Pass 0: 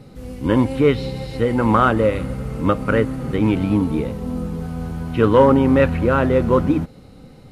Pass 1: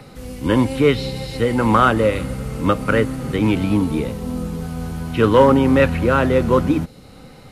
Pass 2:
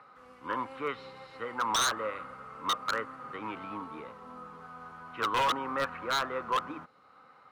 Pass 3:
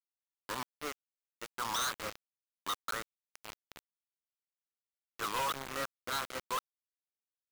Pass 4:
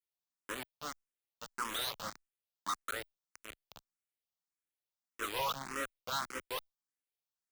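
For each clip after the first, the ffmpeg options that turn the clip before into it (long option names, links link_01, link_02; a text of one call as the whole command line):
ffmpeg -i in.wav -filter_complex "[0:a]highshelf=frequency=2500:gain=8.5,acrossover=split=180|600|2400[link_01][link_02][link_03][link_04];[link_03]acompressor=mode=upward:threshold=-42dB:ratio=2.5[link_05];[link_01][link_02][link_05][link_04]amix=inputs=4:normalize=0" out.wav
ffmpeg -i in.wav -af "bandpass=frequency=1200:width_type=q:width=4.6:csg=0,aeval=exprs='0.0841*(abs(mod(val(0)/0.0841+3,4)-2)-1)':channel_layout=same" out.wav
ffmpeg -i in.wav -af "acrusher=bits=4:mix=0:aa=0.000001,volume=-7dB" out.wav
ffmpeg -i in.wav -filter_complex "[0:a]asplit=2[link_01][link_02];[link_02]afreqshift=1.7[link_03];[link_01][link_03]amix=inputs=2:normalize=1,volume=1.5dB" out.wav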